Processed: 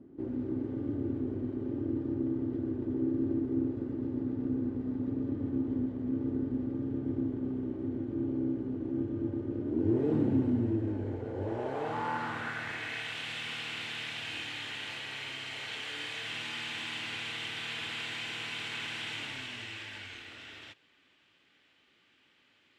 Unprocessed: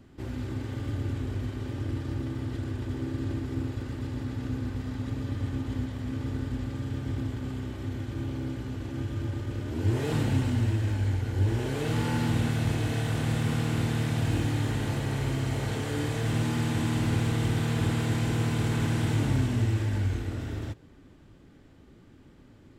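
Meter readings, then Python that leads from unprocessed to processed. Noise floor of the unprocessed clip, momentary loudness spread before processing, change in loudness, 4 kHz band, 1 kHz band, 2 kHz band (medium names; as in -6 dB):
-54 dBFS, 8 LU, -4.5 dB, +2.5 dB, -3.0 dB, +0.5 dB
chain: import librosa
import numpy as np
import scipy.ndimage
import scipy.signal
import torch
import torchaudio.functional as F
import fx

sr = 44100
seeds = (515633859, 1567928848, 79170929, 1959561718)

y = fx.filter_sweep_bandpass(x, sr, from_hz=320.0, to_hz=2800.0, start_s=10.84, end_s=13.18, q=2.1)
y = y * librosa.db_to_amplitude(6.0)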